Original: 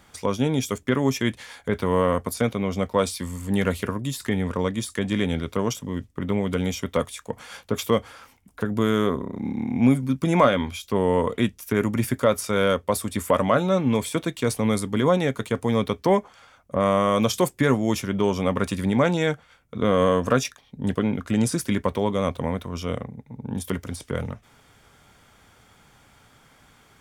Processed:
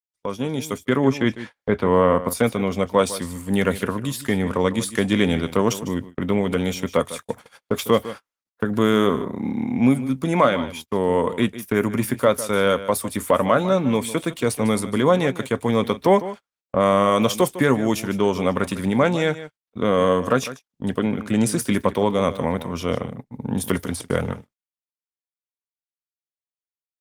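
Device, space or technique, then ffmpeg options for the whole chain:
video call: -filter_complex "[0:a]agate=range=-29dB:threshold=-49dB:ratio=16:detection=peak,asettb=1/sr,asplit=3[a][b][c];[a]atrim=end=0.974[d];[b]atrim=start=0.97:end=2.28,asetpts=PTS-STARTPTS,afade=t=in:d=0.004:c=qsin,afade=t=out:st=1.306:d=0.004:c=qsin,aemphasis=mode=reproduction:type=75fm[e];[c]atrim=start=2.276[f];[d][e]acrossfade=d=0.004:c1=hsin:c2=qsin[g];[g][f]acrossfade=d=0.004:c1=qsin:c2=hsin,highpass=f=150:p=1,aecho=1:1:152:0.188,dynaudnorm=f=170:g=9:m=12dB,agate=range=-40dB:threshold=-30dB:ratio=16:detection=peak,volume=-3dB" -ar 48000 -c:a libopus -b:a 32k

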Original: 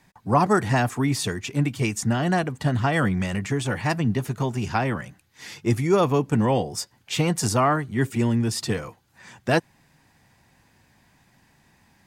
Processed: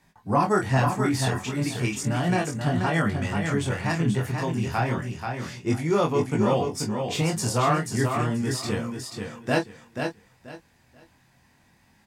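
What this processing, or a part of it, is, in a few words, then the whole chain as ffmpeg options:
double-tracked vocal: -filter_complex "[0:a]asettb=1/sr,asplit=3[a][b][c];[a]atrim=end=5.504[d];[b]atrim=start=5.5:end=6.66,asetpts=PTS-STARTPTS,afade=t=in:d=0.004:c=qsin,afade=t=out:st=1.156:d=0.004:c=qsin,lowpass=11k[e];[c]atrim=start=6.656[f];[d][e]acrossfade=d=0.004:c1=hsin:c2=qsin[g];[g][f]acrossfade=d=0.004:c1=qsin:c2=hsin,asplit=2[h][i];[i]adelay=24,volume=-8.5dB[j];[h][j]amix=inputs=2:normalize=0,flanger=delay=19:depth=6.9:speed=0.33,aecho=1:1:484|968|1452:0.531|0.122|0.0281"

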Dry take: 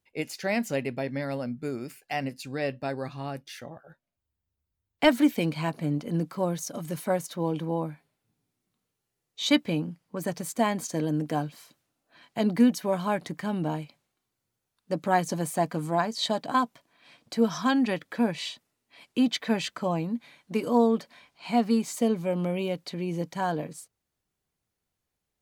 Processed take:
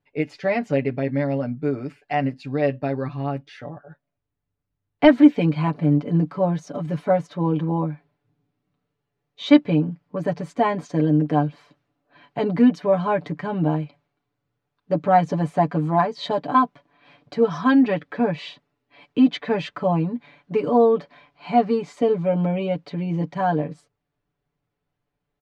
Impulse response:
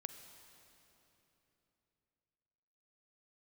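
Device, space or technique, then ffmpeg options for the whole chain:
phone in a pocket: -af "lowpass=3.6k,highshelf=f=2.2k:g=-9,aecho=1:1:6.9:0.8,volume=5dB"

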